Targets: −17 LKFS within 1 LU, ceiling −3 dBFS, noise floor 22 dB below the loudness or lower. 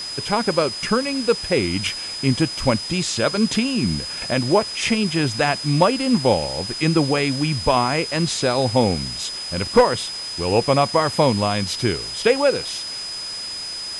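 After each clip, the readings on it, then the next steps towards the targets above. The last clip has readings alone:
interfering tone 5,000 Hz; level of the tone −28 dBFS; background noise floor −30 dBFS; target noise floor −43 dBFS; integrated loudness −20.5 LKFS; sample peak −4.5 dBFS; target loudness −17.0 LKFS
→ notch filter 5,000 Hz, Q 30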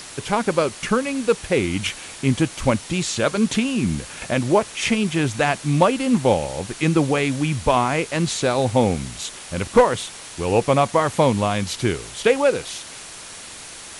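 interfering tone none found; background noise floor −38 dBFS; target noise floor −43 dBFS
→ broadband denoise 6 dB, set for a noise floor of −38 dBFS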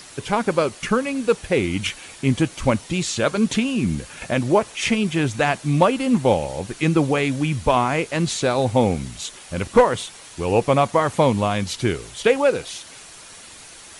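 background noise floor −42 dBFS; target noise floor −43 dBFS
→ broadband denoise 6 dB, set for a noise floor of −42 dBFS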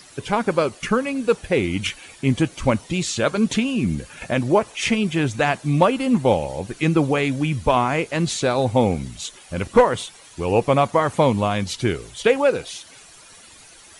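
background noise floor −46 dBFS; integrated loudness −21.0 LKFS; sample peak −4.5 dBFS; target loudness −17.0 LKFS
→ level +4 dB
brickwall limiter −3 dBFS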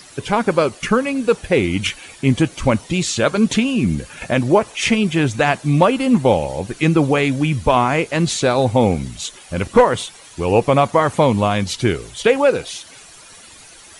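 integrated loudness −17.5 LKFS; sample peak −3.0 dBFS; background noise floor −42 dBFS

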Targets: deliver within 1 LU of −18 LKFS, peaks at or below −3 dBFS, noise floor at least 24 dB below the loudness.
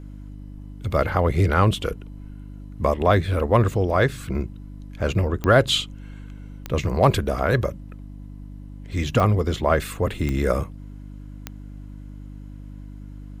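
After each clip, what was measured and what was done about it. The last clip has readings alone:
number of clicks 5; mains hum 50 Hz; hum harmonics up to 300 Hz; level of the hum −36 dBFS; integrated loudness −22.0 LKFS; sample peak −3.5 dBFS; target loudness −18.0 LKFS
→ click removal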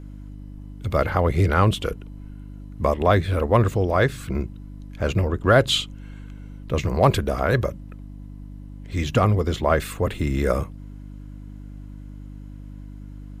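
number of clicks 0; mains hum 50 Hz; hum harmonics up to 300 Hz; level of the hum −36 dBFS
→ hum removal 50 Hz, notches 6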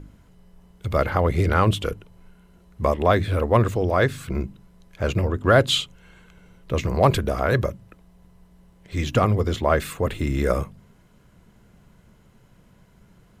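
mains hum none found; integrated loudness −22.5 LKFS; sample peak −3.5 dBFS; target loudness −18.0 LKFS
→ level +4.5 dB
brickwall limiter −3 dBFS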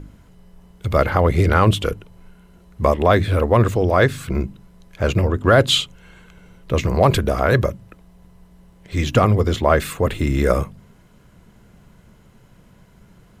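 integrated loudness −18.5 LKFS; sample peak −3.0 dBFS; background noise floor −51 dBFS

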